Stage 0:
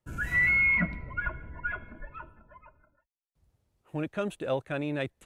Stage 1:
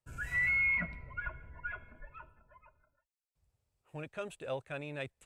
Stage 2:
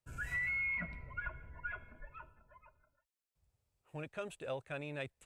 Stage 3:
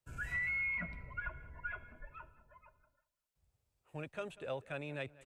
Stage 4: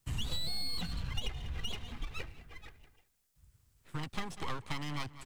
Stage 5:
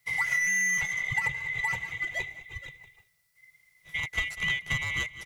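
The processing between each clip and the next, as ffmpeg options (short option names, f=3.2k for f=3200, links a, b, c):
-af "equalizer=f=200:t=o:w=0.33:g=-9,equalizer=f=315:t=o:w=0.33:g=-9,equalizer=f=2.5k:t=o:w=0.33:g=4,equalizer=f=5k:t=o:w=0.33:g=4,equalizer=f=8k:t=o:w=0.33:g=7,volume=-7.5dB"
-af "acompressor=threshold=-34dB:ratio=4,volume=-1dB"
-filter_complex "[0:a]acrossover=split=220|1100|5400[a][b][c][d];[d]alimiter=level_in=33dB:limit=-24dB:level=0:latency=1:release=277,volume=-33dB[e];[a][b][c][e]amix=inputs=4:normalize=0,asplit=2[f][g];[g]adelay=192,lowpass=f=3.7k:p=1,volume=-20dB,asplit=2[h][i];[i]adelay=192,lowpass=f=3.7k:p=1,volume=0.33,asplit=2[j][k];[k]adelay=192,lowpass=f=3.7k:p=1,volume=0.33[l];[f][h][j][l]amix=inputs=4:normalize=0"
-filter_complex "[0:a]acompressor=threshold=-45dB:ratio=6,acrossover=split=320|4300[a][b][c];[b]aeval=exprs='abs(val(0))':c=same[d];[a][d][c]amix=inputs=3:normalize=0,volume=14dB"
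-af "afftfilt=real='real(if(lt(b,920),b+92*(1-2*mod(floor(b/92),2)),b),0)':imag='imag(if(lt(b,920),b+92*(1-2*mod(floor(b/92),2)),b),0)':win_size=2048:overlap=0.75,lowshelf=f=190:t=q:w=3:g=7.5,volume=4.5dB"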